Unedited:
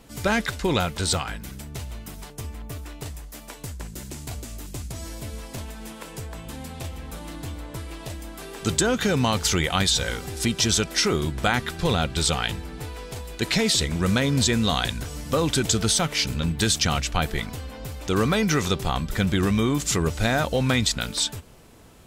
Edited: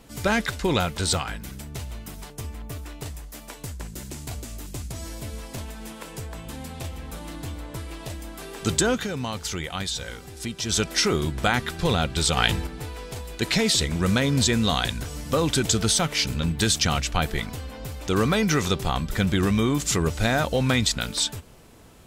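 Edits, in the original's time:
8.92–10.8 dip -8 dB, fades 0.15 s
12.37–12.67 gain +5.5 dB

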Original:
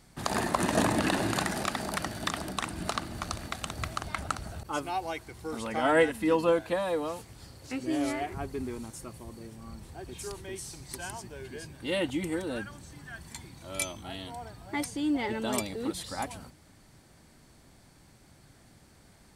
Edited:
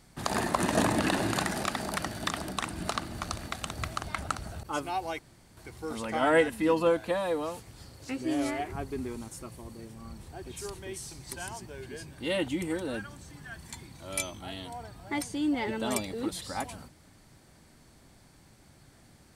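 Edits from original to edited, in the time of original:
5.19 insert room tone 0.38 s

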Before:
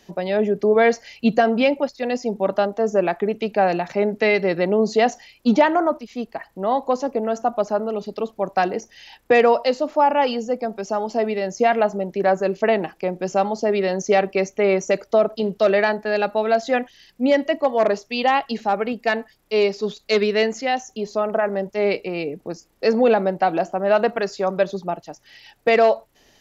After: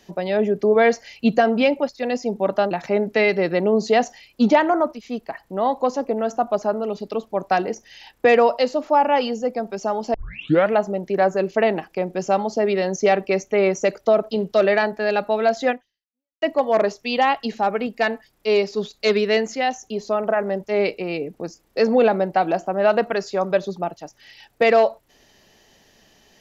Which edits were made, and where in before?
2.71–3.77 cut
11.2 tape start 0.59 s
16.76–17.48 fade out exponential

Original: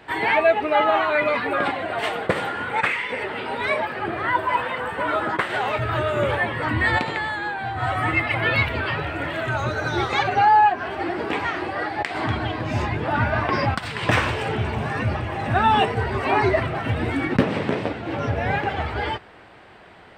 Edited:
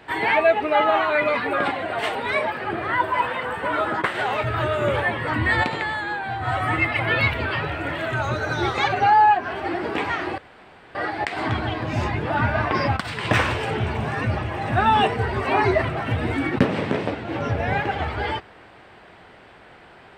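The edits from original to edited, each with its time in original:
2.15–3.5 cut
11.73 insert room tone 0.57 s

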